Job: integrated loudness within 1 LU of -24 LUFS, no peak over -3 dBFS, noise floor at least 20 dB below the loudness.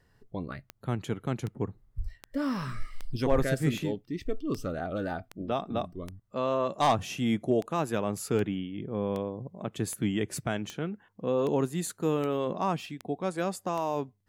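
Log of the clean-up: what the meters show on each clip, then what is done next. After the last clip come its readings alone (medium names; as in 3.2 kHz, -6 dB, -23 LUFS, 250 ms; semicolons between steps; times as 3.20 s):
clicks found 18; loudness -31.5 LUFS; peak level -12.5 dBFS; loudness target -24.0 LUFS
-> de-click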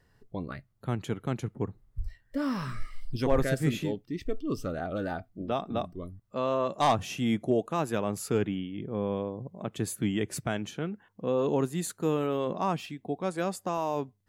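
clicks found 0; loudness -31.5 LUFS; peak level -12.5 dBFS; loudness target -24.0 LUFS
-> trim +7.5 dB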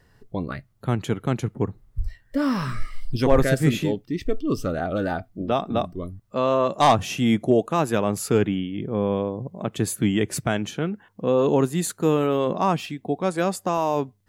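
loudness -24.0 LUFS; peak level -5.0 dBFS; noise floor -61 dBFS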